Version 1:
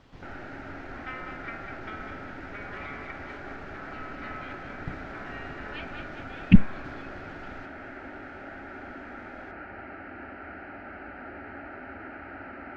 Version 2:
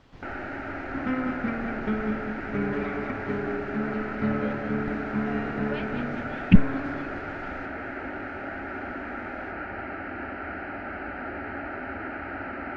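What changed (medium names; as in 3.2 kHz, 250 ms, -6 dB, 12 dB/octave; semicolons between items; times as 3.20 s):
first sound +7.0 dB; second sound: remove Butterworth band-pass 2.6 kHz, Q 0.61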